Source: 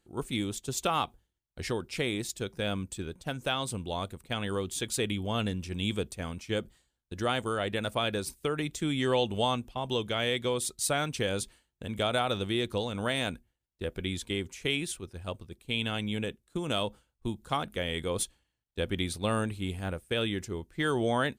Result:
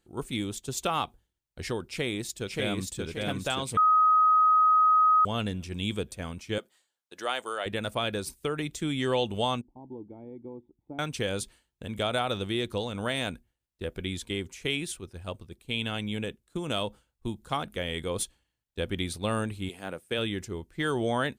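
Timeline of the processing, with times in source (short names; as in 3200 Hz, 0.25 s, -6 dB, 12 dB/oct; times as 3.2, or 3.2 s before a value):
1.86–3.02 echo throw 0.58 s, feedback 45%, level -2 dB
3.77–5.25 bleep 1260 Hz -17.5 dBFS
6.58–7.66 HPF 510 Hz
9.61–10.99 vocal tract filter u
19.68–20.17 HPF 360 Hz -> 120 Hz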